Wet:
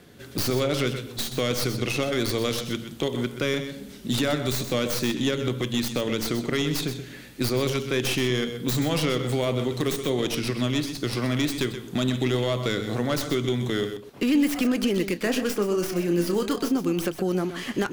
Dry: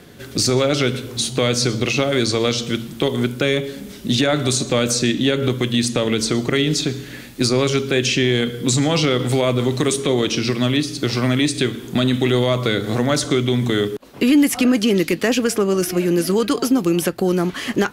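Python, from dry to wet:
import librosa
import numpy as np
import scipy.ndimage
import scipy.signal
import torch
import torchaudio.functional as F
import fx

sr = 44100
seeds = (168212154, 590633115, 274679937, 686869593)

y = fx.tracing_dist(x, sr, depth_ms=0.12)
y = fx.doubler(y, sr, ms=29.0, db=-9, at=(15.15, 16.71), fade=0.02)
y = y + 10.0 ** (-10.5 / 20.0) * np.pad(y, (int(127 * sr / 1000.0), 0))[:len(y)]
y = y * librosa.db_to_amplitude(-7.5)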